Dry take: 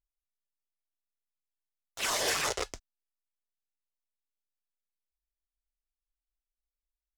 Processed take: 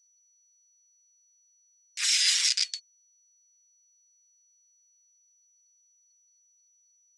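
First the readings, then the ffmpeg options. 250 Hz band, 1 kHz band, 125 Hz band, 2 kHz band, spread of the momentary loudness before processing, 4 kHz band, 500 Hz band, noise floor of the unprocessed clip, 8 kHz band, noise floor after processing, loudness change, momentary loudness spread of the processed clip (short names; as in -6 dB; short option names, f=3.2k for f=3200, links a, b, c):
under -40 dB, under -15 dB, under -40 dB, +1.5 dB, 21 LU, +10.0 dB, under -40 dB, under -85 dBFS, +7.5 dB, -66 dBFS, +7.0 dB, 18 LU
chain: -af "afftfilt=real='real(if(lt(b,272),68*(eq(floor(b/68),0)*1+eq(floor(b/68),1)*2+eq(floor(b/68),2)*3+eq(floor(b/68),3)*0)+mod(b,68),b),0)':imag='imag(if(lt(b,272),68*(eq(floor(b/68),0)*1+eq(floor(b/68),1)*2+eq(floor(b/68),2)*3+eq(floor(b/68),3)*0)+mod(b,68),b),0)':win_size=2048:overlap=0.75,aeval=exprs='val(0)+0.000282*sin(2*PI*5900*n/s)':c=same,asuperpass=centerf=4500:order=8:qfactor=0.6,volume=7.5dB"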